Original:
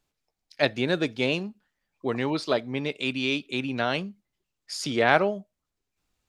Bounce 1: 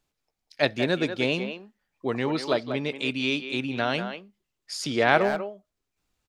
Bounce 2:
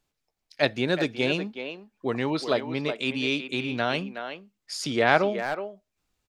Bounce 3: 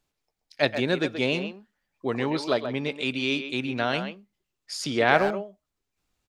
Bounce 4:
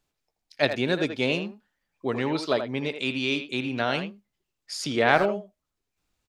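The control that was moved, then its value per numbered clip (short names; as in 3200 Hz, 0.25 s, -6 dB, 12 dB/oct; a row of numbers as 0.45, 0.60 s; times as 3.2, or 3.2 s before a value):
speakerphone echo, time: 190, 370, 130, 80 ms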